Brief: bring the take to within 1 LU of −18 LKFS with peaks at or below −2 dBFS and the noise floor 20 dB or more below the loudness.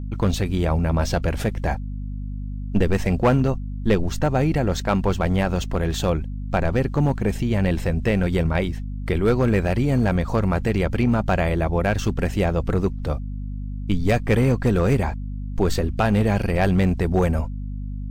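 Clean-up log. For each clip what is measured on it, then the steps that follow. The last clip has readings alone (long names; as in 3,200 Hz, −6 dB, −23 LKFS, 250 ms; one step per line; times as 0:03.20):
share of clipped samples 0.7%; peaks flattened at −11.0 dBFS; mains hum 50 Hz; hum harmonics up to 250 Hz; level of the hum −27 dBFS; integrated loudness −22.0 LKFS; sample peak −11.0 dBFS; target loudness −18.0 LKFS
→ clipped peaks rebuilt −11 dBFS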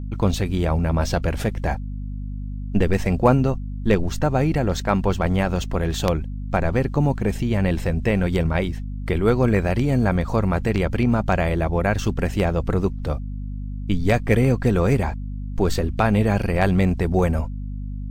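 share of clipped samples 0.0%; mains hum 50 Hz; hum harmonics up to 250 Hz; level of the hum −27 dBFS
→ mains-hum notches 50/100/150/200/250 Hz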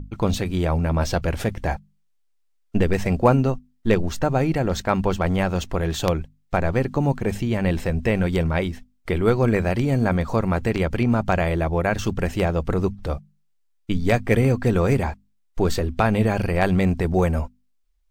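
mains hum none found; integrated loudness −22.5 LKFS; sample peak −2.0 dBFS; target loudness −18.0 LKFS
→ level +4.5 dB
brickwall limiter −2 dBFS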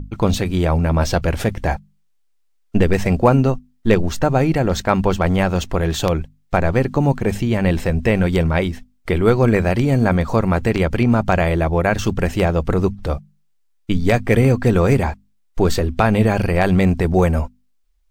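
integrated loudness −18.0 LKFS; sample peak −2.0 dBFS; background noise floor −60 dBFS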